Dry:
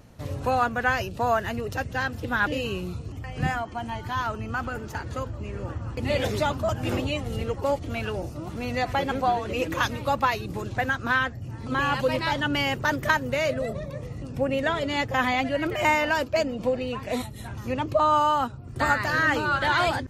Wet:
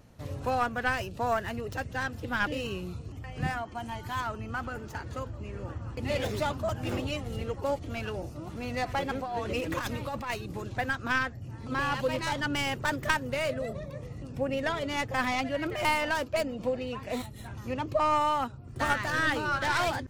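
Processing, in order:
stylus tracing distortion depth 0.11 ms
0:03.75–0:04.21: high-shelf EQ 7,400 Hz +10.5 dB
0:09.22–0:10.30: compressor whose output falls as the input rises −27 dBFS, ratio −1
level −5 dB

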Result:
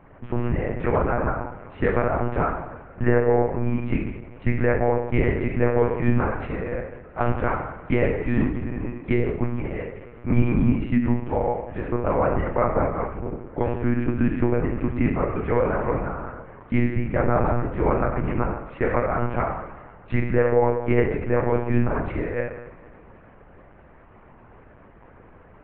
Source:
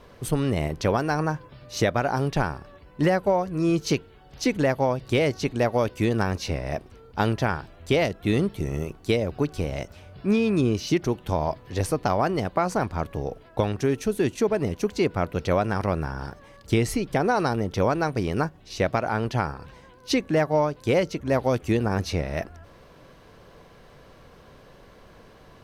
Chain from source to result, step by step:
single-sideband voice off tune −120 Hz 150–2,400 Hz
coupled-rooms reverb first 0.82 s, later 3.2 s, from −19 dB, DRR −0.5 dB
one-pitch LPC vocoder at 8 kHz 120 Hz

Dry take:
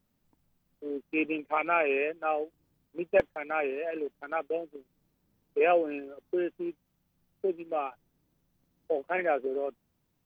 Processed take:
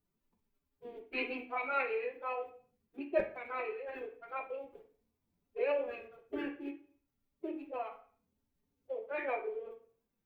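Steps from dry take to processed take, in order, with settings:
spectral magnitudes quantised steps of 15 dB
phase-vocoder pitch shift with formants kept +8.5 semitones
mains-hum notches 50/100/150/200/250 Hz
on a send: convolution reverb RT60 0.50 s, pre-delay 3 ms, DRR 1.5 dB
on the sum: level −8.5 dB

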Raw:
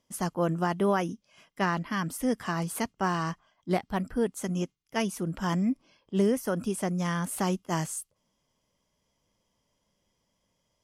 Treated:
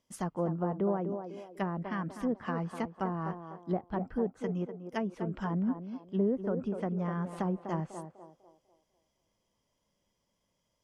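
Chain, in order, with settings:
treble cut that deepens with the level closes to 710 Hz, closed at −23.5 dBFS
feedback echo with a band-pass in the loop 248 ms, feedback 42%, band-pass 540 Hz, level −6 dB
level −4 dB

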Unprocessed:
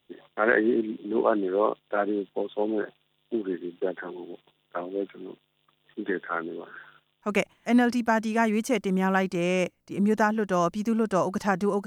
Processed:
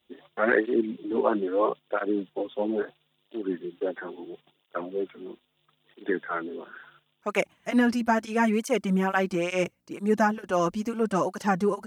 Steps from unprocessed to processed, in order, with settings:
through-zero flanger with one copy inverted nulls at 0.75 Hz, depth 7.5 ms
level +2.5 dB

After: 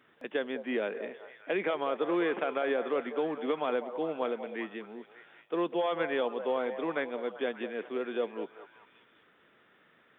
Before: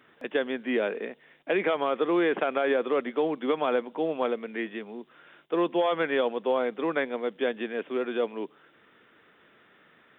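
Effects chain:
echo through a band-pass that steps 198 ms, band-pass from 620 Hz, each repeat 0.7 octaves, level −8 dB
level −5 dB

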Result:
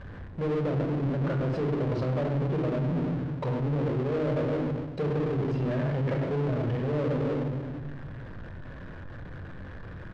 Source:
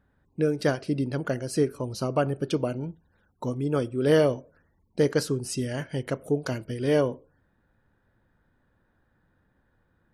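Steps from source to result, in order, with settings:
treble cut that deepens with the level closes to 550 Hz, closed at −24 dBFS
in parallel at +0.5 dB: brickwall limiter −22 dBFS, peak gain reduction 9 dB
on the sum: far-end echo of a speakerphone 100 ms, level −9 dB
rectangular room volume 3,300 cubic metres, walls furnished, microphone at 5.6 metres
reversed playback
downward compressor, threshold −24 dBFS, peak gain reduction 15.5 dB
reversed playback
power curve on the samples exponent 0.5
low-pass filter 3,700 Hz 12 dB per octave
level −6 dB

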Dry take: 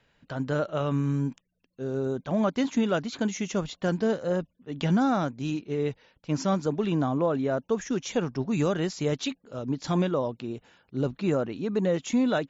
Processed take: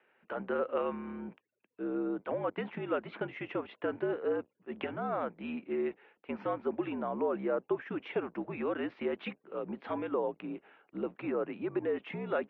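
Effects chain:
sub-octave generator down 2 octaves, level −3 dB
downward compressor, threshold −25 dBFS, peak gain reduction 8 dB
single-sideband voice off tune −67 Hz 350–2,700 Hz

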